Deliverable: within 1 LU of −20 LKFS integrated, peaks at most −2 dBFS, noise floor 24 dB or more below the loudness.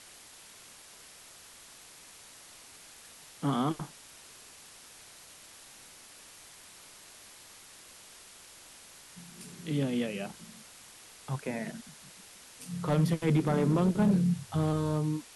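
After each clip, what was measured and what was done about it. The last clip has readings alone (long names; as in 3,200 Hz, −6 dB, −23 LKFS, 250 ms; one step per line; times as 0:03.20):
share of clipped samples 0.4%; peaks flattened at −19.5 dBFS; background noise floor −53 dBFS; target noise floor −55 dBFS; integrated loudness −30.5 LKFS; sample peak −19.5 dBFS; target loudness −20.0 LKFS
→ clipped peaks rebuilt −19.5 dBFS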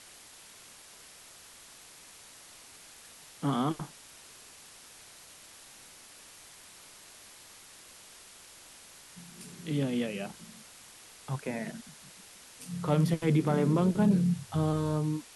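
share of clipped samples 0.0%; background noise floor −53 dBFS; target noise floor −54 dBFS
→ noise reduction from a noise print 6 dB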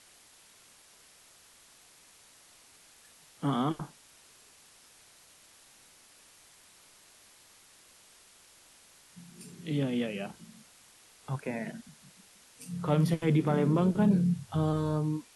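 background noise floor −59 dBFS; integrated loudness −30.0 LKFS; sample peak −14.0 dBFS; target loudness −20.0 LKFS
→ level +10 dB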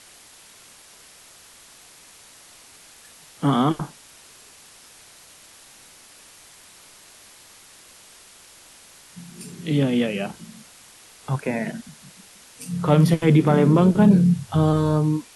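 integrated loudness −20.0 LKFS; sample peak −4.0 dBFS; background noise floor −49 dBFS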